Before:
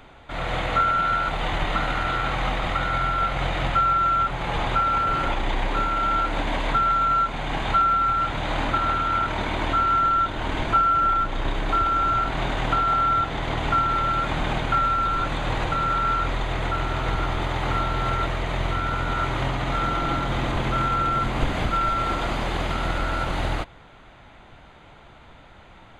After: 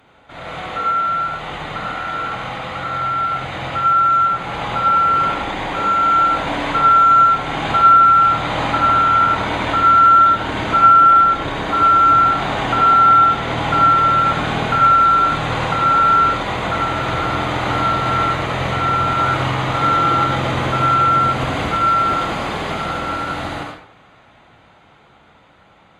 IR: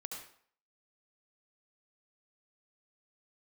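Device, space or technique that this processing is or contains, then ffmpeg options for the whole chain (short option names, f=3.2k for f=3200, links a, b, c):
far-field microphone of a smart speaker: -filter_complex "[1:a]atrim=start_sample=2205[a];[0:a][a]afir=irnorm=-1:irlink=0,highpass=89,dynaudnorm=f=920:g=11:m=10dB,volume=1dB" -ar 48000 -c:a libopus -b:a 48k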